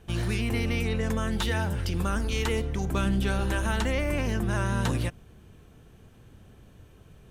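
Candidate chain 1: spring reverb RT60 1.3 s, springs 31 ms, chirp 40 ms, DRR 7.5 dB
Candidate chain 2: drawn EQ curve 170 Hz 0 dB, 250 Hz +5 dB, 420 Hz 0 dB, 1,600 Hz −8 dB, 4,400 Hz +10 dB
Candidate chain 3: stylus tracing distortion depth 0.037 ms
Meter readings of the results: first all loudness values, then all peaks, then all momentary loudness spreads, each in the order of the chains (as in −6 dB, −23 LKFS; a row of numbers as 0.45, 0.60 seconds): −27.0, −26.5, −28.0 LKFS; −12.5, −10.5, −15.0 dBFS; 6, 2, 2 LU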